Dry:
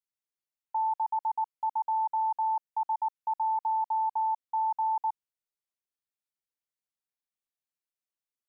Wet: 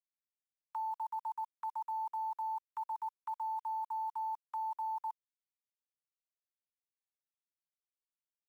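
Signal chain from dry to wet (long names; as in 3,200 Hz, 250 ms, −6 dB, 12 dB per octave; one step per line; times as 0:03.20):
noise gate with hold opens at −29 dBFS
Butterworth high-pass 960 Hz 72 dB per octave
compressor whose output falls as the input rises −37 dBFS, ratio −0.5
brickwall limiter −39 dBFS, peak gain reduction 6.5 dB
bit-depth reduction 12 bits, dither none
level +5.5 dB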